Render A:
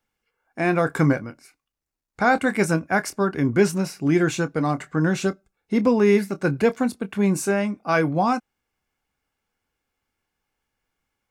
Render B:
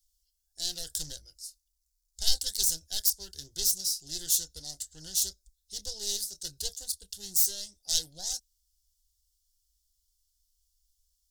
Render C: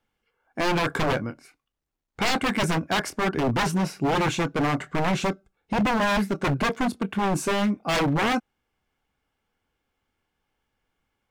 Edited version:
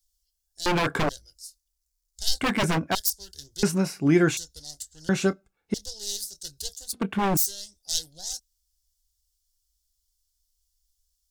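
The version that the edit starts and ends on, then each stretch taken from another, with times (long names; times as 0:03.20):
B
0:00.66–0:01.09: punch in from C
0:02.41–0:02.95: punch in from C
0:03.63–0:04.37: punch in from A
0:05.09–0:05.74: punch in from A
0:06.93–0:07.37: punch in from C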